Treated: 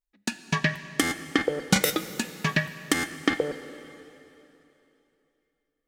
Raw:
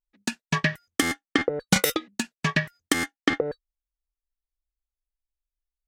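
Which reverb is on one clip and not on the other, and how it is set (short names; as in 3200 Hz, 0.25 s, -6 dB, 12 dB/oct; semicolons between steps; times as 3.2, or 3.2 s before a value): plate-style reverb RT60 3.1 s, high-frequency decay 0.95×, DRR 11 dB; gain -1 dB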